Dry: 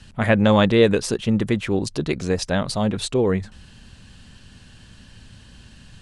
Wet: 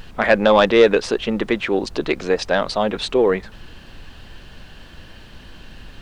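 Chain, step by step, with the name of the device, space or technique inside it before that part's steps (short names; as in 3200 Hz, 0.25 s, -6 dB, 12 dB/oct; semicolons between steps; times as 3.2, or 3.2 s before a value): aircraft cabin announcement (BPF 380–3700 Hz; soft clip -9 dBFS, distortion -18 dB; brown noise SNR 18 dB); gain +7 dB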